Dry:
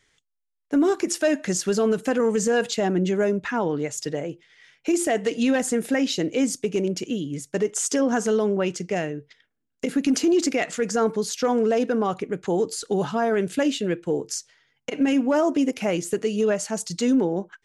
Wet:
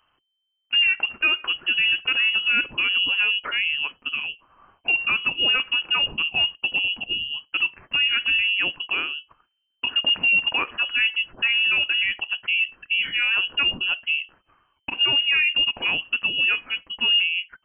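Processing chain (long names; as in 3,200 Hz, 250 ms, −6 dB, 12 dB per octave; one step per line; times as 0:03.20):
voice inversion scrambler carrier 3,100 Hz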